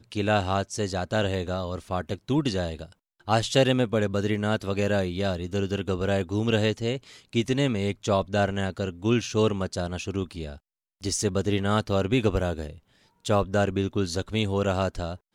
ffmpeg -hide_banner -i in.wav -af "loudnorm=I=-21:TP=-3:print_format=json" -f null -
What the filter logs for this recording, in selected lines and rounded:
"input_i" : "-26.7",
"input_tp" : "-7.8",
"input_lra" : "2.1",
"input_thresh" : "-37.0",